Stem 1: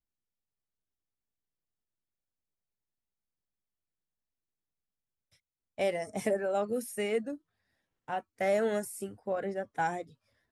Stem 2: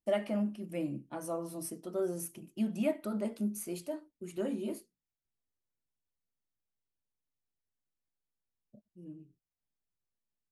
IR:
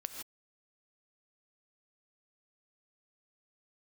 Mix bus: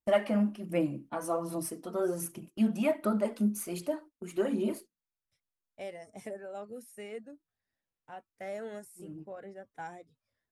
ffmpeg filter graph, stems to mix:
-filter_complex "[0:a]volume=-11.5dB[a];[1:a]agate=range=-11dB:threshold=-51dB:ratio=16:detection=peak,equalizer=f=1.2k:t=o:w=1.7:g=6,aphaser=in_gain=1:out_gain=1:delay=4.4:decay=0.42:speed=1.3:type=sinusoidal,volume=2dB[b];[a][b]amix=inputs=2:normalize=0"

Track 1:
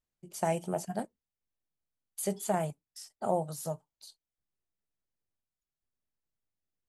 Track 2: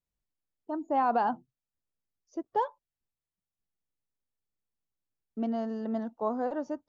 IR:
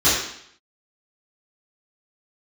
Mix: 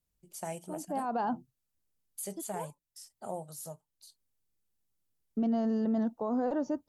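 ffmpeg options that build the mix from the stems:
-filter_complex "[0:a]deesser=0.55,volume=-9dB,asplit=2[a][b];[1:a]lowshelf=f=460:g=8.5,volume=-0.5dB[c];[b]apad=whole_len=303746[d];[c][d]sidechaincompress=threshold=-48dB:ratio=8:attack=8.1:release=461[e];[a][e]amix=inputs=2:normalize=0,aemphasis=mode=production:type=cd,alimiter=limit=-23.5dB:level=0:latency=1:release=19"

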